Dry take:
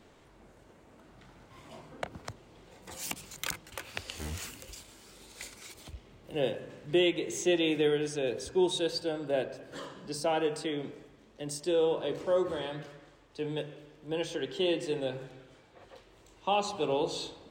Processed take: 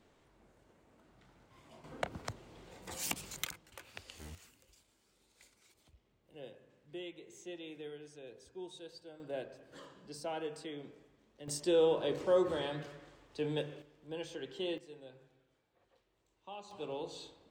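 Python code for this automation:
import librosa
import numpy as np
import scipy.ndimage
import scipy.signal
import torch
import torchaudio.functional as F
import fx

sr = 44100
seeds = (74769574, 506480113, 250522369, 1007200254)

y = fx.gain(x, sr, db=fx.steps((0.0, -9.0), (1.84, 0.0), (3.45, -11.0), (4.35, -19.5), (9.2, -10.5), (11.48, -1.0), (13.82, -9.0), (14.78, -19.5), (16.71, -11.5)))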